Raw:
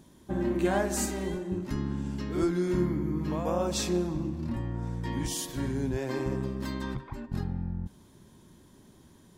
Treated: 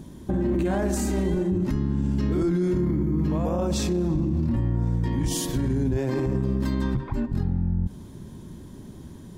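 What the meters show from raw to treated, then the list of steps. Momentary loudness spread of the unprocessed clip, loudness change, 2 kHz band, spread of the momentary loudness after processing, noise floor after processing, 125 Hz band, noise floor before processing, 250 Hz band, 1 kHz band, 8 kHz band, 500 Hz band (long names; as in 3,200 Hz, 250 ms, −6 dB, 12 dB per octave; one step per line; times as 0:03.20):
8 LU, +6.0 dB, −0.5 dB, 18 LU, −43 dBFS, +8.5 dB, −57 dBFS, +6.0 dB, +0.5 dB, +1.0 dB, +3.5 dB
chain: low-shelf EQ 400 Hz +11 dB
brickwall limiter −23 dBFS, peak gain reduction 14.5 dB
level +6 dB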